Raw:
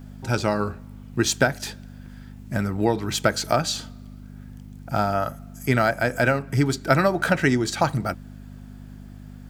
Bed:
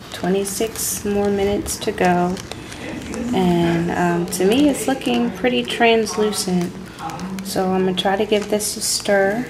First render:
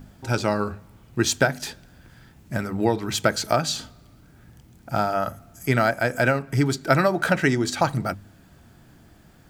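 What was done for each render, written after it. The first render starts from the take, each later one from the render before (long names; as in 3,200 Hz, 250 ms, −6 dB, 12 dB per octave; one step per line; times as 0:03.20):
hum removal 50 Hz, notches 5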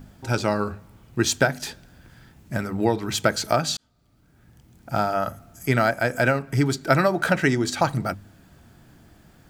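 0:03.77–0:04.95: fade in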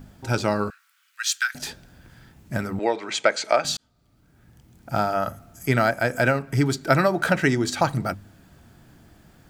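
0:00.70–0:01.55: elliptic high-pass filter 1,400 Hz, stop band 80 dB
0:02.79–0:03.65: loudspeaker in its box 420–7,700 Hz, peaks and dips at 570 Hz +5 dB, 2,200 Hz +8 dB, 5,400 Hz −4 dB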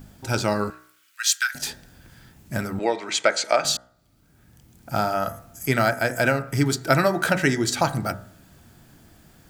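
high-shelf EQ 5,000 Hz +7 dB
hum removal 61.78 Hz, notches 33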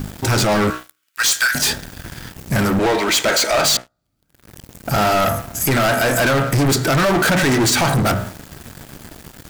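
brickwall limiter −12.5 dBFS, peak gain reduction 9 dB
leveller curve on the samples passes 5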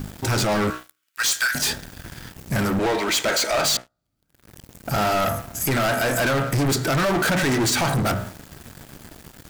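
level −5 dB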